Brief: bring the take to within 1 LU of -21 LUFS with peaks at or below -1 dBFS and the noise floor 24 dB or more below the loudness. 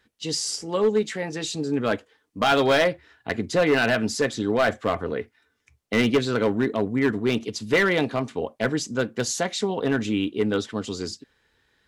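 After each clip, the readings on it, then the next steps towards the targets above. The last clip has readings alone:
clipped 1.2%; flat tops at -14.0 dBFS; loudness -24.0 LUFS; peak -14.0 dBFS; loudness target -21.0 LUFS
-> clip repair -14 dBFS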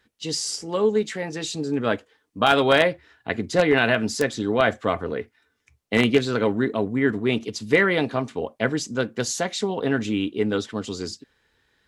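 clipped 0.0%; loudness -23.5 LUFS; peak -5.0 dBFS; loudness target -21.0 LUFS
-> gain +2.5 dB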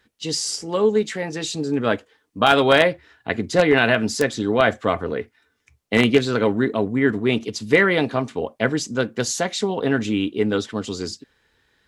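loudness -21.0 LUFS; peak -2.5 dBFS; noise floor -67 dBFS

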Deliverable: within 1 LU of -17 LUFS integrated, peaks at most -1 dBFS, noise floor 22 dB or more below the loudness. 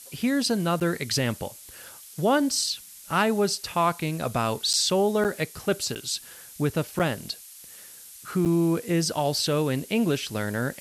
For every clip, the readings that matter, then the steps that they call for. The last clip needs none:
dropouts 6; longest dropout 7.8 ms; noise floor -46 dBFS; noise floor target -48 dBFS; loudness -25.5 LUFS; peak -10.0 dBFS; loudness target -17.0 LUFS
-> interpolate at 0.8/4.73/5.24/5.95/6.99/8.45, 7.8 ms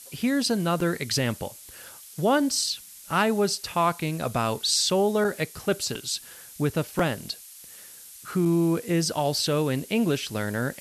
dropouts 0; noise floor -46 dBFS; noise floor target -48 dBFS
-> denoiser 6 dB, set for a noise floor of -46 dBFS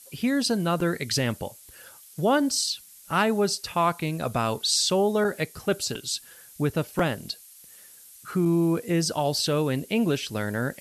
noise floor -50 dBFS; loudness -25.5 LUFS; peak -10.0 dBFS; loudness target -17.0 LUFS
-> gain +8.5 dB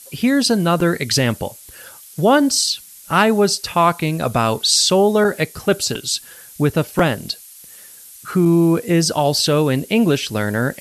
loudness -17.0 LUFS; peak -1.5 dBFS; noise floor -41 dBFS

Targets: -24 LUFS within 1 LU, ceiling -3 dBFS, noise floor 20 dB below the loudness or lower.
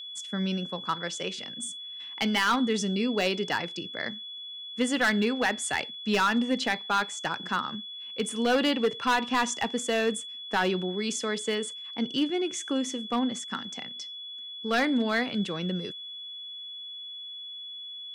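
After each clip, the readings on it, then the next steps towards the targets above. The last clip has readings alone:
clipped 0.6%; flat tops at -18.5 dBFS; steady tone 3400 Hz; tone level -38 dBFS; loudness -29.0 LUFS; peak -18.5 dBFS; loudness target -24.0 LUFS
-> clip repair -18.5 dBFS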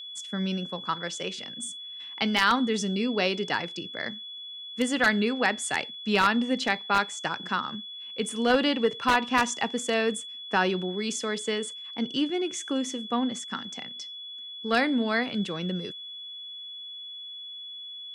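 clipped 0.0%; steady tone 3400 Hz; tone level -38 dBFS
-> notch 3400 Hz, Q 30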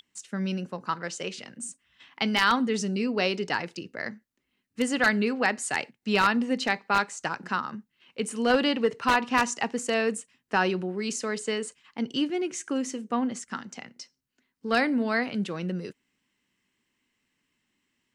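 steady tone none; loudness -27.5 LUFS; peak -9.0 dBFS; loudness target -24.0 LUFS
-> gain +3.5 dB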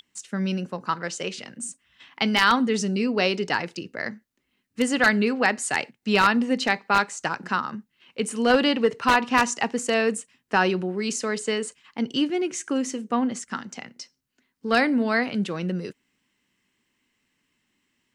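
loudness -24.0 LUFS; peak -5.5 dBFS; noise floor -75 dBFS

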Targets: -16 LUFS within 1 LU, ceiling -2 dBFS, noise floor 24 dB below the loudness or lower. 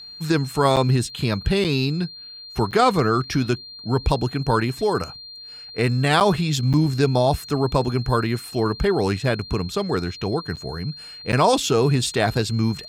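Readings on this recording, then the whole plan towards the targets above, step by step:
dropouts 7; longest dropout 7.7 ms; steady tone 4200 Hz; tone level -37 dBFS; loudness -21.5 LUFS; peak -5.0 dBFS; loudness target -16.0 LUFS
-> interpolate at 0.76/1.64/2.71/6.2/6.73/10.56/11.32, 7.7 ms; notch 4200 Hz, Q 30; gain +5.5 dB; limiter -2 dBFS

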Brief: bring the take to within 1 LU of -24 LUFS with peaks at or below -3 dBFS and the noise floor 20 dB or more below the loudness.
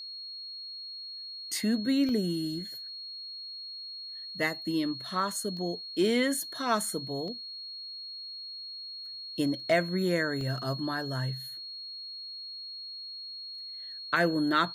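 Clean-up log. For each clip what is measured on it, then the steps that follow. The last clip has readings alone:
dropouts 4; longest dropout 1.2 ms; steady tone 4300 Hz; tone level -39 dBFS; loudness -32.0 LUFS; peak -13.0 dBFS; loudness target -24.0 LUFS
-> interpolate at 2.09/5.57/7.28/10.41, 1.2 ms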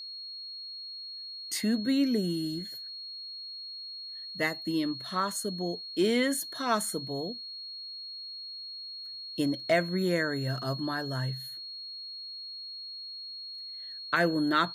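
dropouts 0; steady tone 4300 Hz; tone level -39 dBFS
-> notch 4300 Hz, Q 30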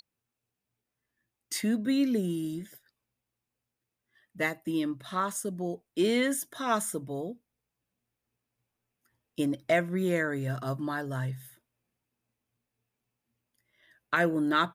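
steady tone none; loudness -30.0 LUFS; peak -12.5 dBFS; loudness target -24.0 LUFS
-> gain +6 dB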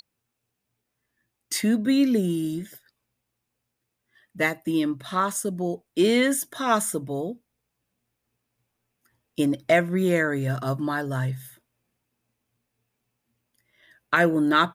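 loudness -24.5 LUFS; peak -6.5 dBFS; noise floor -81 dBFS

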